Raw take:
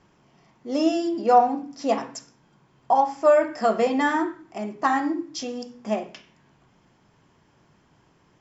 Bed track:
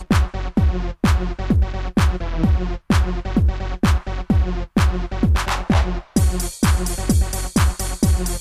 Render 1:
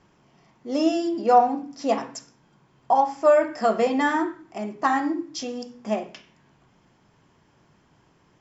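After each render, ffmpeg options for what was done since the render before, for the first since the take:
-af anull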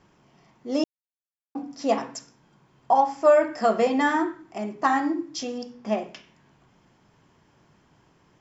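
-filter_complex "[0:a]asettb=1/sr,asplit=3[s0][s1][s2];[s0]atrim=end=5.584[s3];[s1]atrim=start=5.58:end=5.99,asetpts=PTS-STARTPTS,afade=t=in:d=0.004:c=qsin,afade=t=out:st=0.406:d=0.004:c=qsin,lowpass=f=6200:w=0.5412,lowpass=f=6200:w=1.3066[s4];[s2]atrim=start=5.986[s5];[s3][s4]acrossfade=d=0.004:c1=hsin:c2=qsin[s6];[s6][s5]acrossfade=d=0.004:c1=qsin:c2=hsin,asplit=3[s7][s8][s9];[s7]atrim=end=0.84,asetpts=PTS-STARTPTS,afade=t=out:st=0.836:d=0.004:c=hsin[s10];[s8]atrim=start=0.84:end=1.55,asetpts=PTS-STARTPTS,volume=0[s11];[s9]atrim=start=1.55,asetpts=PTS-STARTPTS,afade=t=in:d=0.004:c=hsin[s12];[s10][s11][s12]concat=n=3:v=0:a=1"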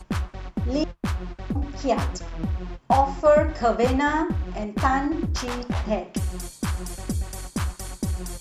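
-filter_complex "[1:a]volume=0.299[s0];[0:a][s0]amix=inputs=2:normalize=0"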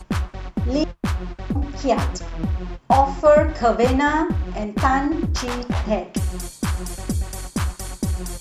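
-af "volume=1.5,alimiter=limit=0.708:level=0:latency=1"

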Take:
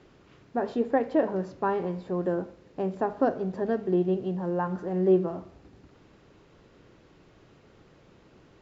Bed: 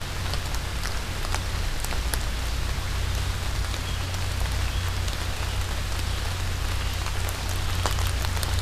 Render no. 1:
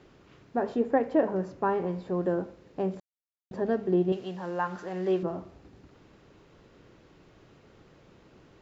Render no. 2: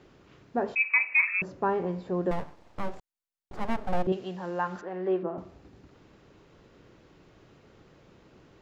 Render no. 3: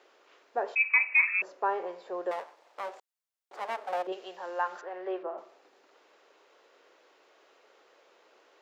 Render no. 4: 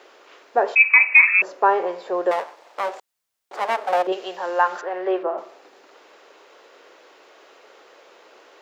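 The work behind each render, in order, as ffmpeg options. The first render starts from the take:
-filter_complex "[0:a]asettb=1/sr,asplit=3[s0][s1][s2];[s0]atrim=end=0.634[s3];[s1]atrim=start=0.63:end=1.89,asetpts=PTS-STARTPTS,afade=t=in:d=0.004:c=qsin,afade=t=out:st=1.256:d=0.004:c=qsin,equalizer=f=4000:w=1.5:g=-4.5[s4];[s2]atrim=start=1.886[s5];[s3][s4]acrossfade=d=0.004:c1=hsin:c2=qsin[s6];[s6][s5]acrossfade=d=0.004:c1=qsin:c2=hsin,asettb=1/sr,asplit=3[s7][s8][s9];[s7]atrim=end=4.124[s10];[s8]atrim=start=4.12:end=5.23,asetpts=PTS-STARTPTS,afade=t=in:d=0.004:c=qsin,afade=t=out:st=1.106:d=0.004:c=qsin,tiltshelf=f=840:g=-9[s11];[s9]atrim=start=5.226[s12];[s10][s11]acrossfade=d=0.004:c1=hsin:c2=qsin[s13];[s13][s12]acrossfade=d=0.004:c1=qsin:c2=hsin,asplit=3[s14][s15][s16];[s14]atrim=end=3,asetpts=PTS-STARTPTS,afade=t=out:st=2.996:d=0.004:c=hsin[s17];[s15]atrim=start=3:end=3.51,asetpts=PTS-STARTPTS,volume=0[s18];[s16]atrim=start=3.51,asetpts=PTS-STARTPTS,afade=t=in:d=0.004:c=hsin[s19];[s17][s18][s19]concat=n=3:v=0:a=1"
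-filter_complex "[0:a]asettb=1/sr,asplit=3[s0][s1][s2];[s0]atrim=end=0.754[s3];[s1]atrim=start=0.75:end=1.42,asetpts=PTS-STARTPTS,afade=t=in:d=0.004:c=qsin,afade=t=out:st=0.666:d=0.004:c=qsin,lowpass=f=2400:t=q:w=0.5098,lowpass=f=2400:t=q:w=0.6013,lowpass=f=2400:t=q:w=0.9,lowpass=f=2400:t=q:w=2.563,afreqshift=-2800[s4];[s2]atrim=start=1.416[s5];[s3][s4]acrossfade=d=0.004:c1=hsin:c2=qsin[s6];[s6][s5]acrossfade=d=0.004:c1=qsin:c2=hsin,asettb=1/sr,asplit=3[s7][s8][s9];[s7]atrim=end=2.314[s10];[s8]atrim=start=2.31:end=4.07,asetpts=PTS-STARTPTS,afade=t=in:d=0.004:c=qsin,afade=t=out:st=1.756:d=0.004:c=qsin,aeval=exprs='abs(val(0))':c=same[s11];[s9]atrim=start=4.066[s12];[s10][s11]acrossfade=d=0.004:c1=hsin:c2=qsin[s13];[s13][s12]acrossfade=d=0.004:c1=qsin:c2=hsin,asettb=1/sr,asplit=3[s14][s15][s16];[s14]atrim=end=4.814[s17];[s15]atrim=start=4.81:end=5.38,asetpts=PTS-STARTPTS,afade=t=in:d=0.004:c=qsin,afade=t=out:st=0.566:d=0.004:c=qsin,highpass=230,lowpass=2100[s18];[s16]atrim=start=5.376[s19];[s17][s18]acrossfade=d=0.004:c1=hsin:c2=qsin[s20];[s20][s19]acrossfade=d=0.004:c1=qsin:c2=hsin"
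-af "highpass=f=470:w=0.5412,highpass=f=470:w=1.3066"
-af "volume=3.98,alimiter=limit=0.794:level=0:latency=1"

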